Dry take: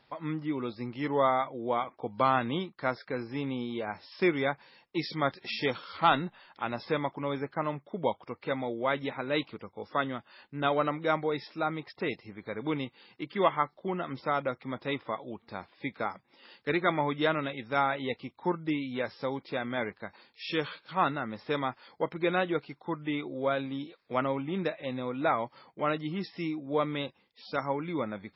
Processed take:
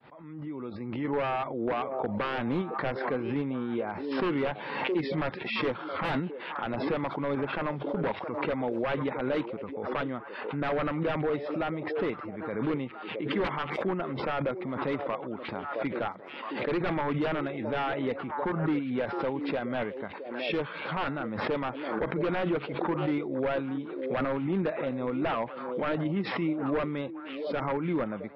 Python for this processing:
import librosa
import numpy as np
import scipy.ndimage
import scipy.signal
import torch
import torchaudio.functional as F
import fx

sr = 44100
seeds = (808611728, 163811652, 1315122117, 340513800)

p1 = fx.fade_in_head(x, sr, length_s=1.54)
p2 = scipy.signal.sosfilt(scipy.signal.butter(2, 110.0, 'highpass', fs=sr, output='sos'), p1)
p3 = fx.high_shelf(p2, sr, hz=3000.0, db=-5.0)
p4 = fx.level_steps(p3, sr, step_db=11)
p5 = p3 + (p4 * 10.0 ** (0.0 / 20.0))
p6 = 10.0 ** (-21.0 / 20.0) * (np.abs((p5 / 10.0 ** (-21.0 / 20.0) + 3.0) % 4.0 - 2.0) - 1.0)
p7 = fx.air_absorb(p6, sr, metres=440.0)
p8 = p7 + fx.echo_stepped(p7, sr, ms=668, hz=430.0, octaves=1.4, feedback_pct=70, wet_db=-10, dry=0)
y = fx.pre_swell(p8, sr, db_per_s=41.0)